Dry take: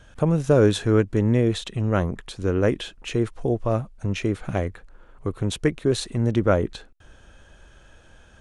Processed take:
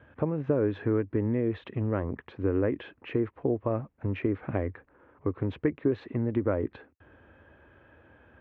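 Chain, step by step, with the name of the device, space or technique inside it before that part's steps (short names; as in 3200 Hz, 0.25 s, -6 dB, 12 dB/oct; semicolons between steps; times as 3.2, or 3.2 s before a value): bass amplifier (compressor 5:1, threshold -22 dBFS, peak gain reduction 9.5 dB; speaker cabinet 80–2100 Hz, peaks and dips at 120 Hz -4 dB, 180 Hz -9 dB, 280 Hz +4 dB, 710 Hz -4 dB, 1400 Hz -5 dB)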